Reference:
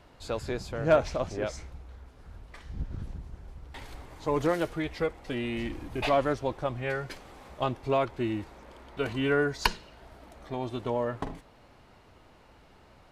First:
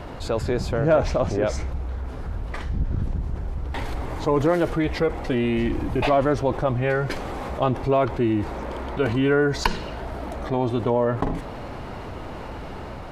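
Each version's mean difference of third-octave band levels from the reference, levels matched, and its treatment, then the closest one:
5.0 dB: automatic gain control gain up to 3.5 dB
high-shelf EQ 2,000 Hz −9.5 dB
envelope flattener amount 50%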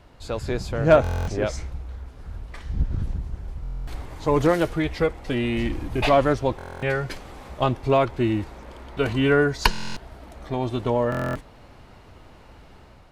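1.5 dB: low-shelf EQ 150 Hz +6 dB
automatic gain control gain up to 4.5 dB
buffer that repeats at 0:01.02/0:03.62/0:06.57/0:09.71/0:11.10, samples 1,024, times 10
level +2 dB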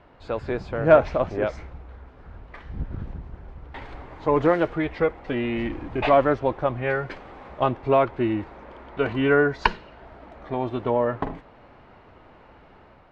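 4.0 dB: low-shelf EQ 190 Hz −4.5 dB
automatic gain control gain up to 3.5 dB
low-pass filter 2,200 Hz 12 dB per octave
level +4.5 dB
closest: second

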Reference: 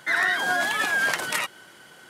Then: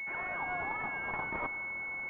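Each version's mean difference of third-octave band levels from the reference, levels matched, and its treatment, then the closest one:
13.0 dB: low shelf with overshoot 700 Hz −7 dB, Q 3
reversed playback
downward compressor 6 to 1, threshold −33 dBFS, peak gain reduction 14.5 dB
reversed playback
four-comb reverb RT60 1.2 s, combs from 28 ms, DRR 14.5 dB
switching amplifier with a slow clock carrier 2,200 Hz
level +4 dB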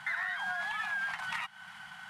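8.5 dB: variable-slope delta modulation 64 kbit/s
elliptic band-stop filter 200–770 Hz, stop band 40 dB
bass and treble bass −5 dB, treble −15 dB
downward compressor 4 to 1, threshold −40 dBFS, peak gain reduction 16 dB
level +4.5 dB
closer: second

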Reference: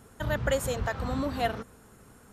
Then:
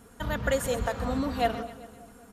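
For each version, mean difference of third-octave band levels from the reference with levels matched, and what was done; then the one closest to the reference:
2.5 dB: comb filter 4.2 ms, depth 44%
echo with a time of its own for lows and highs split 750 Hz, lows 194 ms, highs 130 ms, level −13.5 dB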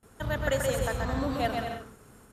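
4.0 dB: noise gate with hold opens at −44 dBFS
bouncing-ball delay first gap 130 ms, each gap 0.65×, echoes 5
level −1.5 dB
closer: first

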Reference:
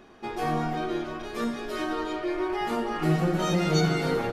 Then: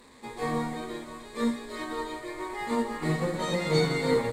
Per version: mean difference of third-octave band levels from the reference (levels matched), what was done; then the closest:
4.0 dB: linear delta modulator 64 kbit/s, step −39 dBFS
EQ curve with evenly spaced ripples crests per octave 1, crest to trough 11 dB
expander for the loud parts 1.5 to 1, over −41 dBFS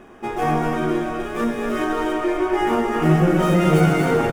3.0 dB: running median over 9 samples
parametric band 4,200 Hz −12 dB 0.34 octaves
on a send: loudspeakers that aren't time-aligned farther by 39 metres −11 dB, 85 metres −6 dB
on the sum: level +7.5 dB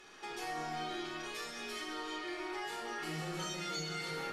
7.0 dB: first-order pre-emphasis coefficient 0.97
downward compressor 3 to 1, threshold −56 dBFS, peak gain reduction 18 dB
high-frequency loss of the air 58 metres
rectangular room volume 2,200 cubic metres, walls furnished, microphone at 4.2 metres
level +11 dB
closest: second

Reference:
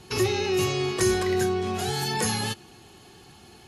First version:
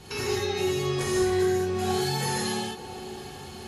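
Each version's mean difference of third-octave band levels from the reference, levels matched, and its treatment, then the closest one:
6.0 dB: downward compressor 2.5 to 1, threshold −39 dBFS, peak gain reduction 13.5 dB
delay with a band-pass on its return 562 ms, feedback 48%, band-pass 450 Hz, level −10 dB
reverb whose tail is shaped and stops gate 240 ms flat, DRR −7.5 dB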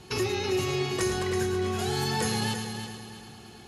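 4.5 dB: downward compressor 2 to 1, threshold −28 dBFS, peak gain reduction 6 dB
high-shelf EQ 9,400 Hz −4 dB
echo machine with several playback heads 109 ms, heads first and third, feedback 52%, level −9 dB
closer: second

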